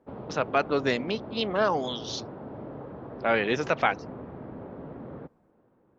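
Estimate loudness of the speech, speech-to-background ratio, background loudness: -28.0 LUFS, 13.0 dB, -41.0 LUFS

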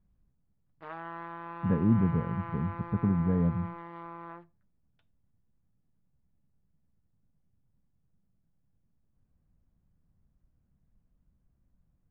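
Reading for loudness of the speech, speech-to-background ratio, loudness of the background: -29.0 LUFS, 13.5 dB, -42.5 LUFS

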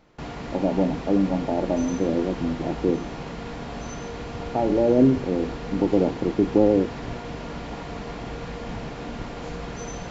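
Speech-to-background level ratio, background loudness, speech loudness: 11.0 dB, -34.5 LUFS, -23.5 LUFS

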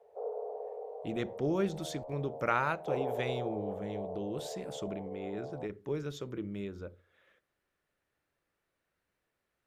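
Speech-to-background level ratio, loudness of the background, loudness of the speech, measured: 4.5 dB, -41.5 LUFS, -37.0 LUFS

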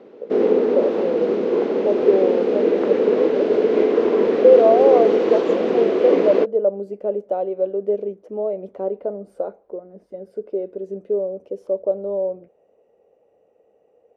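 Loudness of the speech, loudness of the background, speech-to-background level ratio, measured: -22.0 LUFS, -18.5 LUFS, -3.5 dB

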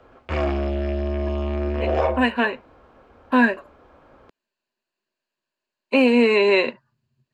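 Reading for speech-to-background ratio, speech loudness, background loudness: 5.5 dB, -19.5 LUFS, -25.0 LUFS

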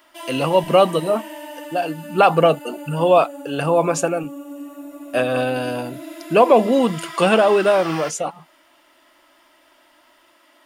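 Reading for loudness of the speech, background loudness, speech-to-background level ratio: -18.5 LUFS, -34.5 LUFS, 16.0 dB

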